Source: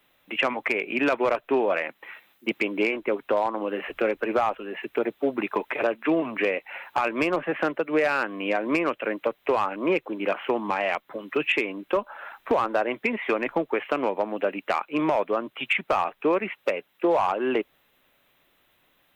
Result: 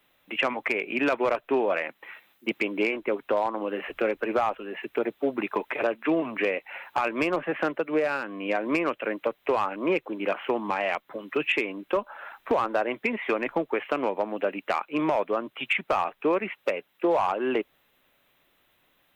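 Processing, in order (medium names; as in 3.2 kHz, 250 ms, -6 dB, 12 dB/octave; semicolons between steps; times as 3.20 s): 7.94–8.49 s: harmonic-percussive split percussive -9 dB; trim -1.5 dB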